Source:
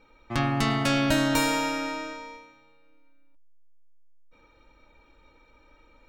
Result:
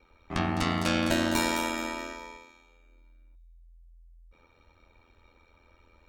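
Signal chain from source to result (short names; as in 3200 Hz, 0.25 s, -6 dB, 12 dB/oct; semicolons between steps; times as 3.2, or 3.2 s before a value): thin delay 0.211 s, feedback 31%, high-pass 4200 Hz, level -6 dB; ring modulator 42 Hz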